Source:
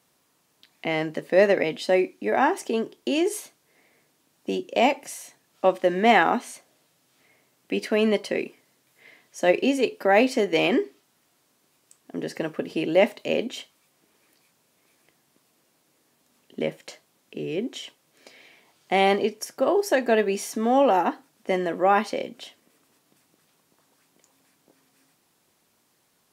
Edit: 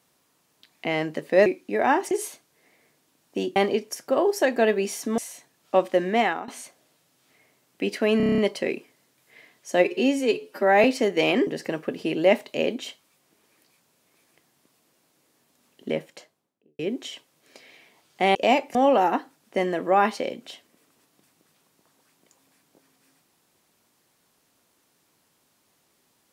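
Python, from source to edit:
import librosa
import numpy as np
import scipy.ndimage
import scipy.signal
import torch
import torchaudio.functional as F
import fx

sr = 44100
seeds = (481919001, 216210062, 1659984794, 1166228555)

y = fx.studio_fade_out(x, sr, start_s=16.62, length_s=0.88)
y = fx.edit(y, sr, fx.cut(start_s=1.46, length_s=0.53),
    fx.cut(start_s=2.64, length_s=0.59),
    fx.swap(start_s=4.68, length_s=0.4, other_s=19.06, other_length_s=1.62),
    fx.fade_out_to(start_s=5.88, length_s=0.5, floor_db=-18.5),
    fx.stutter(start_s=8.07, slice_s=0.03, count=8),
    fx.stretch_span(start_s=9.54, length_s=0.66, factor=1.5),
    fx.cut(start_s=10.83, length_s=1.35), tone=tone)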